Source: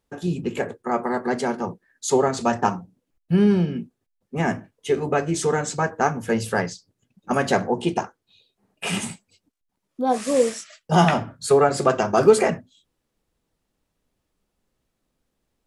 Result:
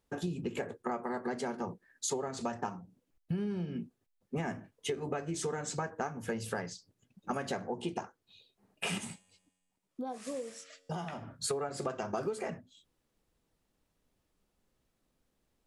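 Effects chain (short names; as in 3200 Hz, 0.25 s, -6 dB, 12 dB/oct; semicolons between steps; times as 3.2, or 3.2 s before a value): compressor 16:1, threshold -29 dBFS, peak gain reduction 21.5 dB; 8.98–11.23 resonator 92 Hz, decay 1.5 s, harmonics all, mix 40%; gain -2.5 dB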